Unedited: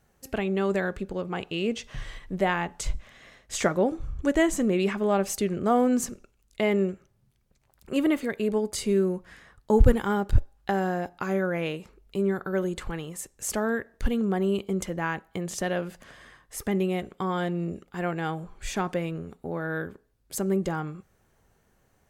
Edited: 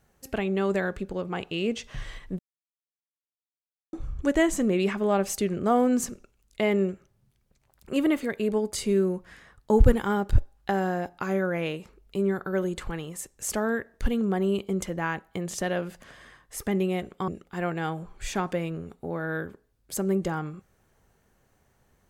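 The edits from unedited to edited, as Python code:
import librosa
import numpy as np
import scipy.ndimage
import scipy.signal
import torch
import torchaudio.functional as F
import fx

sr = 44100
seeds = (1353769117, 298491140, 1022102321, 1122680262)

y = fx.edit(x, sr, fx.silence(start_s=2.39, length_s=1.54),
    fx.cut(start_s=17.28, length_s=0.41), tone=tone)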